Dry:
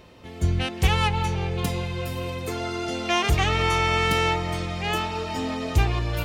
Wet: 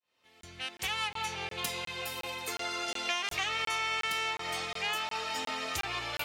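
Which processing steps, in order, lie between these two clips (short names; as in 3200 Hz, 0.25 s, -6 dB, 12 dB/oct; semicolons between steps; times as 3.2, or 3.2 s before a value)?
opening faded in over 1.43 s; tilt shelf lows -10 dB, about 640 Hz; on a send: delay with a stepping band-pass 0.585 s, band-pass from 490 Hz, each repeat 0.7 oct, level -9 dB; on the sum: compressor 6:1, threshold -20 dBFS, peak gain reduction 8.5 dB; HPF 150 Hz 6 dB/oct; crackling interface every 0.36 s, samples 1024, zero, from 0.41; gain -8.5 dB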